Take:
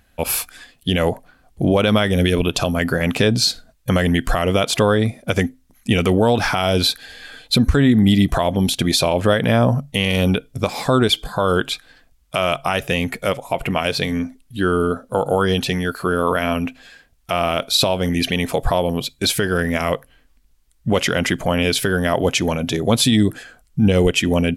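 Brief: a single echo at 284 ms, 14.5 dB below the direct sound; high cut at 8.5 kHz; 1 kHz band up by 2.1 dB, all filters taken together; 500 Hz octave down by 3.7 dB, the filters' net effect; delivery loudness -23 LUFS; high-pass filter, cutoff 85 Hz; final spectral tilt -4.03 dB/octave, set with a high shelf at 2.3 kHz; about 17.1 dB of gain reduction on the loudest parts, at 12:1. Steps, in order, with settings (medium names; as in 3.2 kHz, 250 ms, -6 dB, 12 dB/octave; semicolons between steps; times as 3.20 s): high-pass 85 Hz; low-pass 8.5 kHz; peaking EQ 500 Hz -6 dB; peaking EQ 1 kHz +6 dB; treble shelf 2.3 kHz -5 dB; compression 12:1, threshold -29 dBFS; delay 284 ms -14.5 dB; trim +11 dB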